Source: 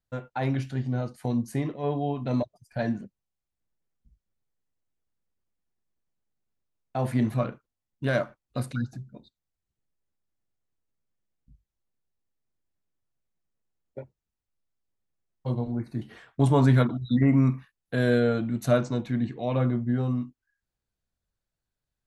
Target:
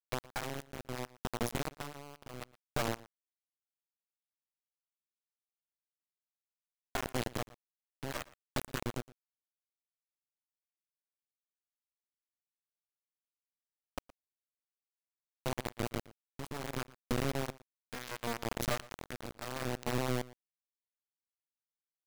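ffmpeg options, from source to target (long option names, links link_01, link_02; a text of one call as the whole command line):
ffmpeg -i in.wav -filter_complex "[0:a]bandreject=frequency=60:width_type=h:width=6,bandreject=frequency=120:width_type=h:width=6,bandreject=frequency=180:width_type=h:width=6,bandreject=frequency=240:width_type=h:width=6,bandreject=frequency=300:width_type=h:width=6,bandreject=frequency=360:width_type=h:width=6,bandreject=frequency=420:width_type=h:width=6,bandreject=frequency=480:width_type=h:width=6,bandreject=frequency=540:width_type=h:width=6,asettb=1/sr,asplit=3[link_01][link_02][link_03];[link_01]atrim=end=8.584[link_04];[link_02]atrim=start=8.58:end=9.03,asetpts=PTS-STARTPTS,afade=type=in:duration=0.004:curve=qsin,afade=type=out:start_time=0.446:duration=0.004:curve=qsin,asubboost=boost=11:cutoff=160[link_05];[link_03]atrim=start=9.026[link_06];[link_04][link_05]acrossfade=duration=0.004:curve1=hsin:curve2=qsin[link_07];[link_07][link_06]acrossfade=duration=0.004:curve1=qsin:curve2=hsin,acompressor=threshold=-35dB:ratio=10,acrusher=bits=3:dc=4:mix=0:aa=0.000001,tremolo=f=0.7:d=0.66,asplit=3[link_08][link_09][link_10];[link_08]afade=type=out:start_time=1.79:duration=0.02[link_11];[link_09]aeval=exprs='0.0237*(cos(1*acos(clip(val(0)/0.0237,-1,1)))-cos(1*PI/2))+0.00531*(cos(4*acos(clip(val(0)/0.0237,-1,1)))-cos(4*PI/2))+0.00211*(cos(7*acos(clip(val(0)/0.0237,-1,1)))-cos(7*PI/2))':channel_layout=same,afade=type=in:start_time=1.79:duration=0.02,afade=type=out:start_time=2.41:duration=0.02[link_12];[link_10]afade=type=in:start_time=2.41:duration=0.02[link_13];[link_11][link_12][link_13]amix=inputs=3:normalize=0,asplit=2[link_14][link_15];[link_15]adelay=116.6,volume=-20dB,highshelf=frequency=4000:gain=-2.62[link_16];[link_14][link_16]amix=inputs=2:normalize=0,volume=6dB" out.wav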